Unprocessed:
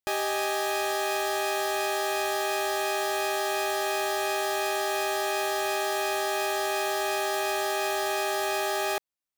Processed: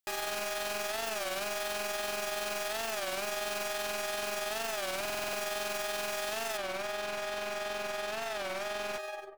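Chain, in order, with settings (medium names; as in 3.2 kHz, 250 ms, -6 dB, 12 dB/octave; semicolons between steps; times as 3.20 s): tilt shelf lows -3.5 dB, about 1.1 kHz; delay 106 ms -11 dB; reverberation RT60 1.2 s, pre-delay 115 ms, DRR 9.5 dB; wavefolder -24 dBFS; AM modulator 21 Hz, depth 40%; peak limiter -31 dBFS, peak gain reduction 7 dB; treble shelf 5.8 kHz +2 dB, from 6.59 s -9 dB; buffer glitch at 4.96 s, samples 2048, times 7; warped record 33 1/3 rpm, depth 160 cents; trim +1.5 dB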